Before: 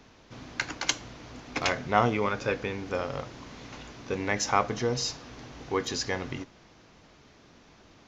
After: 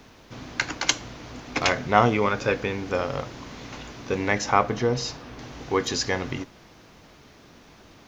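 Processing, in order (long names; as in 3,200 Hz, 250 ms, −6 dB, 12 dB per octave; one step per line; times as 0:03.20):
0:04.38–0:05.39: low-pass filter 3,100 Hz 6 dB per octave
bit-depth reduction 12 bits, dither none
level +5 dB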